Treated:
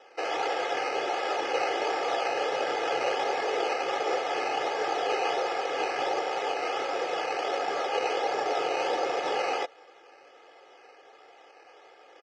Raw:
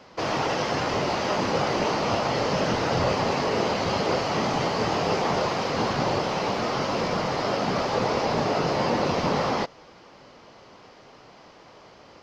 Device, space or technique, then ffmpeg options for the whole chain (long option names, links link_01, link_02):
circuit-bent sampling toy: -af "acrusher=samples=10:mix=1:aa=0.000001:lfo=1:lforange=6:lforate=1.4,highpass=100,highpass=540,equalizer=frequency=640:width_type=q:width=4:gain=8,equalizer=frequency=1000:width_type=q:width=4:gain=-10,equalizer=frequency=4000:width_type=q:width=4:gain=-9,lowpass=frequency=5200:width=0.5412,lowpass=frequency=5200:width=1.3066,aecho=1:1:2.4:0.82,volume=-3dB"